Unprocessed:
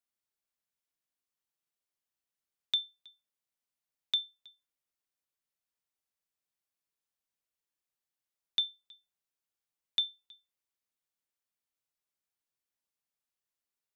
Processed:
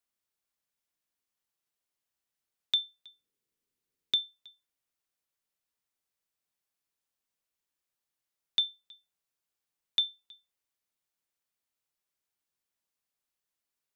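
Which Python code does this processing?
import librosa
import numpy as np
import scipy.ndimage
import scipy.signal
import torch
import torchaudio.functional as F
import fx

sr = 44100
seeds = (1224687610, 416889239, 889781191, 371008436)

y = fx.low_shelf_res(x, sr, hz=530.0, db=6.0, q=3.0, at=(3.07, 4.22))
y = F.gain(torch.from_numpy(y), 2.5).numpy()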